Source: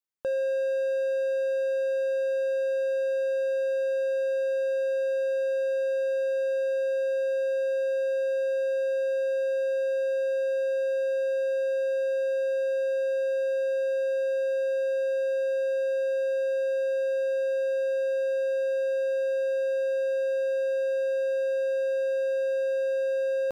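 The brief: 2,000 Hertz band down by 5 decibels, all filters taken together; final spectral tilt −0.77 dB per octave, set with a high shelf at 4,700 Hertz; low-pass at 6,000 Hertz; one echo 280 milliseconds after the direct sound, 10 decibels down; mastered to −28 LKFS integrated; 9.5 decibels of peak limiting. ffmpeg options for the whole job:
ffmpeg -i in.wav -af "lowpass=6000,equalizer=frequency=2000:width_type=o:gain=-8,highshelf=frequency=4700:gain=5,alimiter=level_in=8.5dB:limit=-24dB:level=0:latency=1,volume=-8.5dB,aecho=1:1:280:0.316,volume=8dB" out.wav

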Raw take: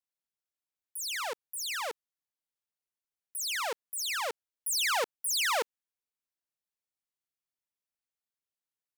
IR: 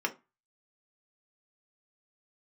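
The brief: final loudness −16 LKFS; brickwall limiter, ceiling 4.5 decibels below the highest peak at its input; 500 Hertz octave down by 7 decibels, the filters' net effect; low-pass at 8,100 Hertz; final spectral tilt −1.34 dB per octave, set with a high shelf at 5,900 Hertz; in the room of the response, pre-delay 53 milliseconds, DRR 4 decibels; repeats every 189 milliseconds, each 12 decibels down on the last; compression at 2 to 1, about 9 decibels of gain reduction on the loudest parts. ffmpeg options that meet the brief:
-filter_complex "[0:a]lowpass=8100,equalizer=frequency=500:width_type=o:gain=-8.5,highshelf=frequency=5900:gain=-7,acompressor=threshold=-45dB:ratio=2,alimiter=level_in=13dB:limit=-24dB:level=0:latency=1,volume=-13dB,aecho=1:1:189|378|567:0.251|0.0628|0.0157,asplit=2[link_01][link_02];[1:a]atrim=start_sample=2205,adelay=53[link_03];[link_02][link_03]afir=irnorm=-1:irlink=0,volume=-11dB[link_04];[link_01][link_04]amix=inputs=2:normalize=0,volume=25.5dB"

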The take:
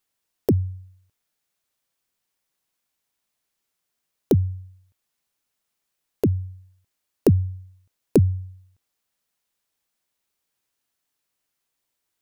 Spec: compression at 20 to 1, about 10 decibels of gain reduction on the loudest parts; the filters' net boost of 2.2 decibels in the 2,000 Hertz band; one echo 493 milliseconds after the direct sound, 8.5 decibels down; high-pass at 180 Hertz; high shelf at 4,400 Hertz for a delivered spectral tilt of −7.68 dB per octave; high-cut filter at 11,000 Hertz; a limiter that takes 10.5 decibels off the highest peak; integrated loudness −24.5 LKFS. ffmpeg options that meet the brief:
ffmpeg -i in.wav -af "highpass=180,lowpass=11000,equalizer=frequency=2000:width_type=o:gain=4,highshelf=frequency=4400:gain=-5,acompressor=threshold=-22dB:ratio=20,alimiter=limit=-19.5dB:level=0:latency=1,aecho=1:1:493:0.376,volume=17dB" out.wav

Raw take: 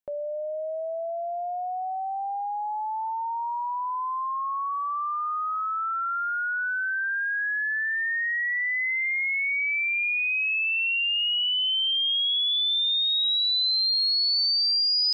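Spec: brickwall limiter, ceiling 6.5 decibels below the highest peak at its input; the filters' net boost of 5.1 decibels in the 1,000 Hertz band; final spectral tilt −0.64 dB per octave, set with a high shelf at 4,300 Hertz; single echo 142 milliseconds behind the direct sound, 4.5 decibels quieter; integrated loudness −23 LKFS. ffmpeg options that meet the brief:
ffmpeg -i in.wav -af "equalizer=frequency=1000:width_type=o:gain=6,highshelf=frequency=4300:gain=6,alimiter=limit=-23dB:level=0:latency=1,aecho=1:1:142:0.596" out.wav

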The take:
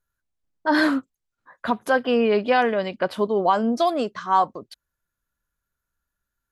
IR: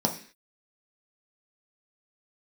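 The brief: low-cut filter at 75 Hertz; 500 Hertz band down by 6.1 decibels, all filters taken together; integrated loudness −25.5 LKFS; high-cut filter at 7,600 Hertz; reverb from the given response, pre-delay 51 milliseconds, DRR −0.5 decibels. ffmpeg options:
-filter_complex "[0:a]highpass=75,lowpass=7600,equalizer=frequency=500:width_type=o:gain=-7.5,asplit=2[link_01][link_02];[1:a]atrim=start_sample=2205,adelay=51[link_03];[link_02][link_03]afir=irnorm=-1:irlink=0,volume=-9.5dB[link_04];[link_01][link_04]amix=inputs=2:normalize=0,volume=-7.5dB"

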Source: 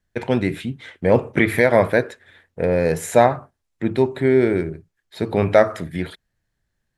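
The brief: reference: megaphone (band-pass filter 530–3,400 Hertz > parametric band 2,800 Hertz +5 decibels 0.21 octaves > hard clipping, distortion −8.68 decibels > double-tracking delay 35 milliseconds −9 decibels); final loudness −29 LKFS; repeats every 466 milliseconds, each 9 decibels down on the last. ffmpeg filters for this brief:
ffmpeg -i in.wav -filter_complex "[0:a]highpass=530,lowpass=3400,equalizer=frequency=2800:width_type=o:width=0.21:gain=5,aecho=1:1:466|932|1398|1864:0.355|0.124|0.0435|0.0152,asoftclip=type=hard:threshold=-15.5dB,asplit=2[link_01][link_02];[link_02]adelay=35,volume=-9dB[link_03];[link_01][link_03]amix=inputs=2:normalize=0,volume=-4dB" out.wav

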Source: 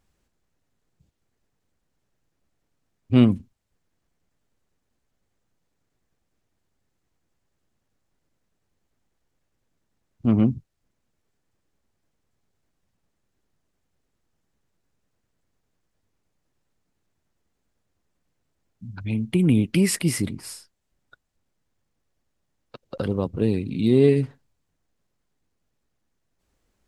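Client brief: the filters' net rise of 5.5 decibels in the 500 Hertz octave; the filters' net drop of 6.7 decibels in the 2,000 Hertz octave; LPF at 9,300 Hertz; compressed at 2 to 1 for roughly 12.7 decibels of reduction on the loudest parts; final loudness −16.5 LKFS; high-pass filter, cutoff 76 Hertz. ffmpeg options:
ffmpeg -i in.wav -af "highpass=76,lowpass=9300,equalizer=frequency=500:width_type=o:gain=7.5,equalizer=frequency=2000:width_type=o:gain=-8.5,acompressor=threshold=-32dB:ratio=2,volume=14.5dB" out.wav

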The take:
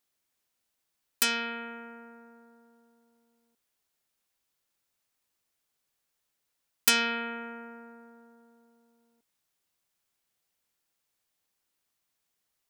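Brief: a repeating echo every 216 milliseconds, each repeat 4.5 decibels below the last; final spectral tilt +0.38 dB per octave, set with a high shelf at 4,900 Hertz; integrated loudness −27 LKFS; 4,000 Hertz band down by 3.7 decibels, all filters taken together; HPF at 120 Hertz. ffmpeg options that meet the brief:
ffmpeg -i in.wav -af "highpass=120,equalizer=frequency=4000:width_type=o:gain=-7.5,highshelf=frequency=4900:gain=4.5,aecho=1:1:216|432|648|864|1080|1296|1512|1728|1944:0.596|0.357|0.214|0.129|0.0772|0.0463|0.0278|0.0167|0.01,volume=0.5dB" out.wav

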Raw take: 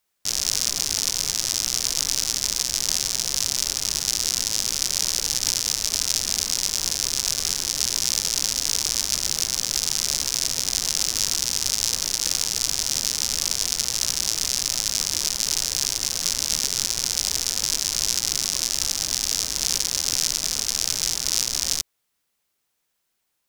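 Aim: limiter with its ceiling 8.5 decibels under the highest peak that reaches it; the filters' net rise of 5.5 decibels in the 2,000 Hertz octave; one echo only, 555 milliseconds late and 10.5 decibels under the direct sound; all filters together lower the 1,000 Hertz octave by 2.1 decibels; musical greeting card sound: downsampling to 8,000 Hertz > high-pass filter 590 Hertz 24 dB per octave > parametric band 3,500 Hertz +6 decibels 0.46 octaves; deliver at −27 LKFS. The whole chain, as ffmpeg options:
ffmpeg -i in.wav -af "equalizer=frequency=1000:width_type=o:gain=-5,equalizer=frequency=2000:width_type=o:gain=7,alimiter=limit=-9dB:level=0:latency=1,aecho=1:1:555:0.299,aresample=8000,aresample=44100,highpass=frequency=590:width=0.5412,highpass=frequency=590:width=1.3066,equalizer=frequency=3500:width_type=o:width=0.46:gain=6,volume=7dB" out.wav

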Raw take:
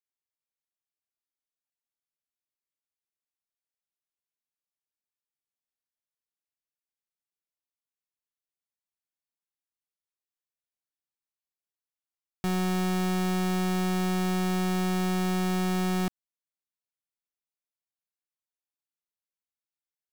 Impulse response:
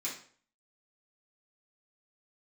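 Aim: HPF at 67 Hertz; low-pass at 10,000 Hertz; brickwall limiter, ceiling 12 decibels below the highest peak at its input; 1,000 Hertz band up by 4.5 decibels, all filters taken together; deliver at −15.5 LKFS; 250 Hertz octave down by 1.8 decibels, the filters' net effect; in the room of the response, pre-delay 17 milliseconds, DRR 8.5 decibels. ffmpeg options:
-filter_complex "[0:a]highpass=67,lowpass=10000,equalizer=frequency=250:width_type=o:gain=-3.5,equalizer=frequency=1000:width_type=o:gain=7,alimiter=level_in=7dB:limit=-24dB:level=0:latency=1,volume=-7dB,asplit=2[link_01][link_02];[1:a]atrim=start_sample=2205,adelay=17[link_03];[link_02][link_03]afir=irnorm=-1:irlink=0,volume=-10.5dB[link_04];[link_01][link_04]amix=inputs=2:normalize=0,volume=24.5dB"

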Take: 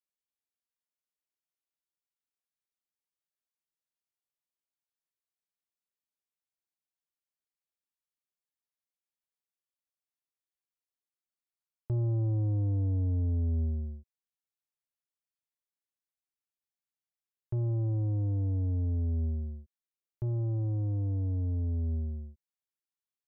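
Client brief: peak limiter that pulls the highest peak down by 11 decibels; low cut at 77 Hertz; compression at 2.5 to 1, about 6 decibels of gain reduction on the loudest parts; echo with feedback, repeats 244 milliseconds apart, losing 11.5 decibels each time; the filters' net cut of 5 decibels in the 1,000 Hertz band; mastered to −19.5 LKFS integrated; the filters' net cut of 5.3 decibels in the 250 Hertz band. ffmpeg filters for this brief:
ffmpeg -i in.wav -af "highpass=77,equalizer=frequency=250:width_type=o:gain=-6.5,equalizer=frequency=1000:width_type=o:gain=-7,acompressor=threshold=-38dB:ratio=2.5,alimiter=level_in=15dB:limit=-24dB:level=0:latency=1,volume=-15dB,aecho=1:1:244|488|732:0.266|0.0718|0.0194,volume=26.5dB" out.wav

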